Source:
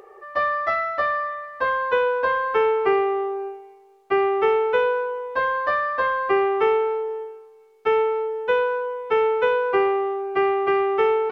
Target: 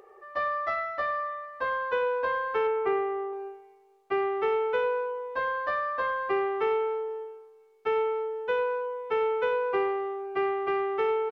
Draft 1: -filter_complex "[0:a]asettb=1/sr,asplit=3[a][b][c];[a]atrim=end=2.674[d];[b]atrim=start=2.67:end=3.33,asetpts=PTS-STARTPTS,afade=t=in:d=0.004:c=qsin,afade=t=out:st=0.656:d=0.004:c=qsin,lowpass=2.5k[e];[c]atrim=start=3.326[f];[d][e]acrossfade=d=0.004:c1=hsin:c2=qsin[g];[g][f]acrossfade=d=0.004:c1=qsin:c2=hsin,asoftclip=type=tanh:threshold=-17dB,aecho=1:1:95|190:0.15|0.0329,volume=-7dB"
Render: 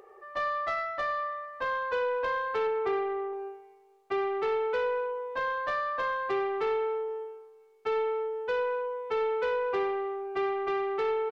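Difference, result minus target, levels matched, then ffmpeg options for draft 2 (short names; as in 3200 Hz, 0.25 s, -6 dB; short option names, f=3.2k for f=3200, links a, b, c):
soft clip: distortion +15 dB
-filter_complex "[0:a]asettb=1/sr,asplit=3[a][b][c];[a]atrim=end=2.674[d];[b]atrim=start=2.67:end=3.33,asetpts=PTS-STARTPTS,afade=t=in:d=0.004:c=qsin,afade=t=out:st=0.656:d=0.004:c=qsin,lowpass=2.5k[e];[c]atrim=start=3.326[f];[d][e]acrossfade=d=0.004:c1=hsin:c2=qsin[g];[g][f]acrossfade=d=0.004:c1=qsin:c2=hsin,asoftclip=type=tanh:threshold=-7.5dB,aecho=1:1:95|190:0.15|0.0329,volume=-7dB"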